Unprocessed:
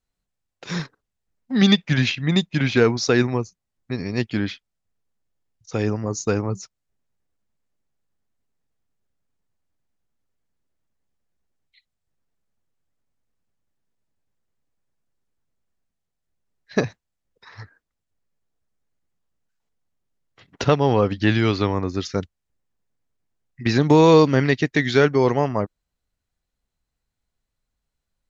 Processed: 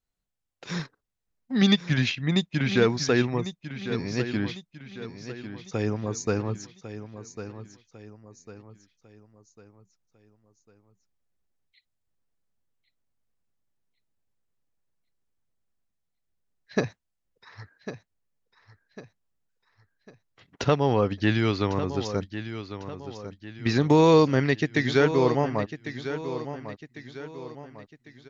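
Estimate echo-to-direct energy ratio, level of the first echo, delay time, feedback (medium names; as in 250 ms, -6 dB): -10.5 dB, -11.5 dB, 1100 ms, 42%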